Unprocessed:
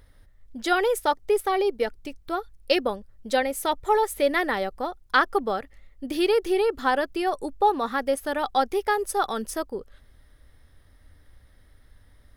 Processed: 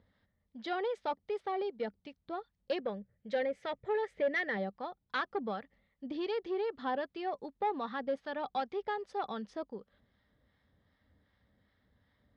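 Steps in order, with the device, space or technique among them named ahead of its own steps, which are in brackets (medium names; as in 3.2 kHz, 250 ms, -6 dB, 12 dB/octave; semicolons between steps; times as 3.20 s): 2.79–4.57 s: graphic EQ 125/250/500/1000/2000/4000 Hz +8/-5/+7/-9/+9/-6 dB; guitar amplifier with harmonic tremolo (harmonic tremolo 2.6 Hz, depth 50%, crossover 820 Hz; saturation -17.5 dBFS, distortion -14 dB; cabinet simulation 110–4100 Hz, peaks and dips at 200 Hz +9 dB, 350 Hz -4 dB, 1.4 kHz -4 dB, 2.6 kHz -5 dB); trim -7 dB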